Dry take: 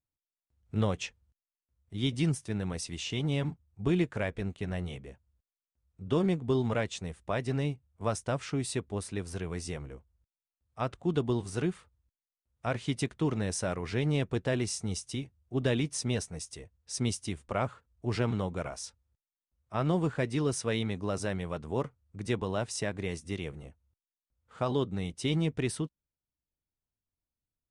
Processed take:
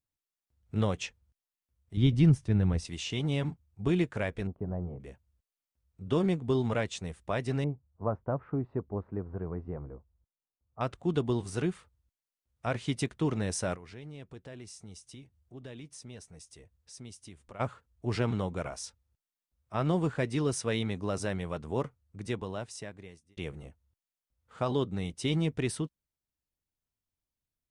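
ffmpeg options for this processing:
-filter_complex "[0:a]asettb=1/sr,asplit=3[a][b][c];[a]atrim=end=1.974[d];[b]atrim=start=1.97:end=2.85,asetpts=PTS-STARTPTS,afade=t=in:d=0.004:c=qsin,afade=t=out:st=0.876:d=0.004:c=qsin,aemphasis=mode=reproduction:type=bsi[e];[c]atrim=start=2.846[f];[d][e]acrossfade=d=0.004:c1=hsin:c2=qsin[g];[g][f]acrossfade=d=0.004:c1=qsin:c2=hsin,asettb=1/sr,asplit=3[h][i][j];[h]atrim=end=4.474[k];[i]atrim=start=4.47:end=5,asetpts=PTS-STARTPTS,afade=t=in:d=0.004:c=qsin,afade=t=out:st=0.526:d=0.004:c=qsin,lowpass=f=1k:w=0.5412,lowpass=f=1k:w=1.3066[l];[j]atrim=start=4.996[m];[k][l]acrossfade=d=0.004:c1=hsin:c2=qsin[n];[n][m]acrossfade=d=0.004:c1=qsin:c2=hsin,asettb=1/sr,asplit=3[o][p][q];[o]atrim=end=7.644[r];[p]atrim=start=7.64:end=10.81,asetpts=PTS-STARTPTS,afade=t=in:d=0.004:c=qsin,afade=t=out:st=3.166:d=0.004:c=qsin,lowpass=f=1.2k:w=0.5412,lowpass=f=1.2k:w=1.3066[s];[q]atrim=start=10.806[t];[r][s]acrossfade=d=0.004:c1=hsin:c2=qsin[u];[u][t]acrossfade=d=0.004:c1=qsin:c2=hsin,asplit=3[v][w][x];[v]afade=t=out:st=13.75:d=0.02[y];[w]acompressor=threshold=-56dB:ratio=2:attack=3.2:release=140:knee=1:detection=peak,afade=t=in:st=13.75:d=0.02,afade=t=out:st=17.59:d=0.02[z];[x]afade=t=in:st=17.59:d=0.02[aa];[y][z][aa]amix=inputs=3:normalize=0,asplit=2[ab][ac];[ab]atrim=end=23.37,asetpts=PTS-STARTPTS,afade=t=out:st=21.85:d=1.52[ad];[ac]atrim=start=23.37,asetpts=PTS-STARTPTS,afade=t=in:d=0.004:c=hsin[ae];[ad][ae]concat=n=2:v=0:a=1"

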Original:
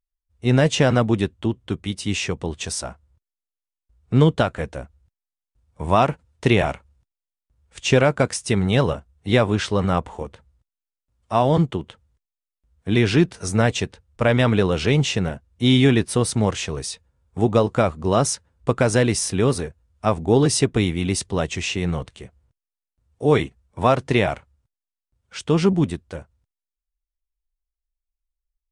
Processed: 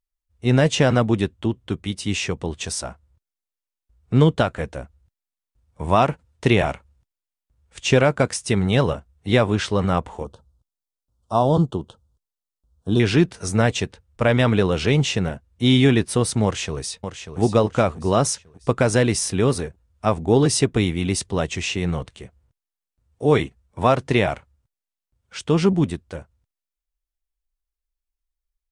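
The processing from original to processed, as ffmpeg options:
-filter_complex "[0:a]asettb=1/sr,asplit=3[a][b][c];[a]atrim=end=10.244[d];[b]atrim=start=10.24:end=13,asetpts=PTS-STARTPTS,afade=t=in:d=0.004:c=qsin,afade=t=out:st=2.756:d=0.004:c=qsin,asuperstop=centerf=2100:order=4:qfactor=0.99[e];[c]atrim=start=12.996[f];[d][e]acrossfade=d=0.004:c1=hsin:c2=qsin[g];[g][f]acrossfade=d=0.004:c1=qsin:c2=hsin,asplit=2[h][i];[i]afade=t=in:st=16.44:d=0.01,afade=t=out:st=17.39:d=0.01,aecho=0:1:590|1180|1770|2360:0.354813|0.141925|0.0567701|0.0227081[j];[h][j]amix=inputs=2:normalize=0"

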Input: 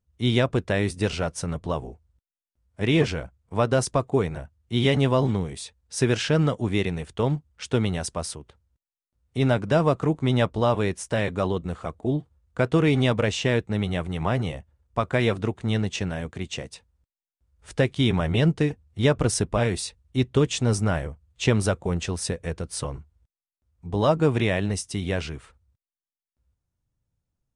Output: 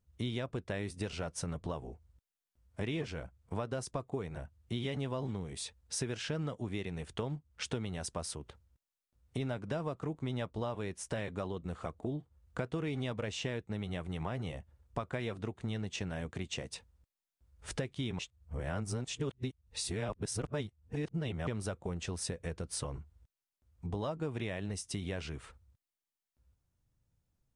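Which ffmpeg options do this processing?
-filter_complex "[0:a]asplit=3[a][b][c];[a]atrim=end=18.192[d];[b]atrim=start=18.188:end=21.472,asetpts=PTS-STARTPTS,areverse[e];[c]atrim=start=21.468[f];[d][e]acrossfade=d=0.004:c1=hsin:c2=hsin[g];[g][f]acrossfade=d=0.004:c1=hsin:c2=hsin,acompressor=threshold=-37dB:ratio=5,volume=1dB"

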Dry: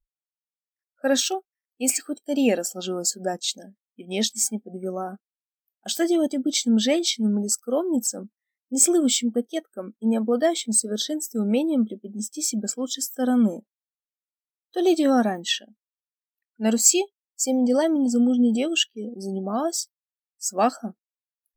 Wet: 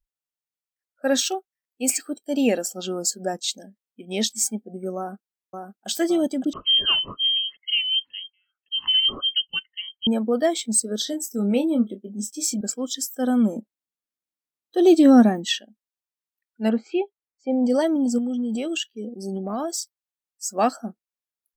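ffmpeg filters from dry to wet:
-filter_complex "[0:a]asplit=2[a][b];[b]afade=t=in:st=4.97:d=0.01,afade=t=out:st=5.88:d=0.01,aecho=0:1:560|1120|1680|2240|2800|3360:0.562341|0.253054|0.113874|0.0512434|0.0230595|0.0103768[c];[a][c]amix=inputs=2:normalize=0,asettb=1/sr,asplit=3[d][e][f];[d]atrim=end=6.534[g];[e]atrim=start=6.53:end=10.07,asetpts=PTS-STARTPTS,afade=t=in:d=0.004:c=qsin,afade=t=out:st=3.536:d=0.004:c=qsin,lowpass=f=2.9k:t=q:w=0.5098,lowpass=f=2.9k:t=q:w=0.6013,lowpass=f=2.9k:t=q:w=0.9,lowpass=f=2.9k:t=q:w=2.563,afreqshift=-3400[h];[f]atrim=start=10.066[i];[g][h]acrossfade=d=0.004:c1=hsin:c2=qsin[j];[j][i]acrossfade=d=0.004:c1=qsin:c2=hsin,asettb=1/sr,asplit=3[k][l][m];[k]atrim=end=11.044[n];[l]atrim=start=11.04:end=12.61,asetpts=PTS-STARTPTS,afade=t=in:d=0.004:c=qsin,afade=t=out:st=1.566:d=0.004:c=qsin,asplit=2[o][p];[p]adelay=25,volume=-8.5dB[q];[o][q]amix=inputs=2:normalize=0,atrim=end_sample=69237[r];[m]atrim=start=12.606[s];[n][r]acrossfade=d=0.004:c1=hsin:c2=qsin[t];[t][s]acrossfade=d=0.004:c1=qsin:c2=hsin,asettb=1/sr,asplit=3[u][v][w];[u]atrim=end=13.564[x];[v]atrim=start=13.56:end=15.45,asetpts=PTS-STARTPTS,afade=t=in:d=0.004:c=qsin,afade=t=out:st=1.886:d=0.004:c=qsin,equalizer=f=240:w=1:g=8.5[y];[w]atrim=start=15.446[z];[x][y]acrossfade=d=0.004:c1=hsin:c2=qsin[aa];[aa][z]acrossfade=d=0.004:c1=qsin:c2=hsin,asplit=3[ab][ac][ad];[ab]afade=t=out:st=16.68:d=0.02[ae];[ac]lowpass=f=2.3k:w=0.5412,lowpass=f=2.3k:w=1.3066,afade=t=in:st=16.68:d=0.02,afade=t=out:st=17.62:d=0.02[af];[ad]afade=t=in:st=17.62:d=0.02[ag];[ae][af][ag]amix=inputs=3:normalize=0,asettb=1/sr,asplit=3[ah][ai][aj];[ah]atrim=end=18.184[ak];[ai]atrim=start=18.18:end=20.53,asetpts=PTS-STARTPTS,afade=t=in:d=0.004:c=qsin,afade=t=out:st=2.346:d=0.004:c=qsin,acompressor=threshold=-23dB:ratio=6:attack=3.2:release=140:knee=1:detection=peak[al];[aj]atrim=start=20.526[am];[ak][al]acrossfade=d=0.004:c1=hsin:c2=qsin[an];[an][am]acrossfade=d=0.004:c1=qsin:c2=hsin"

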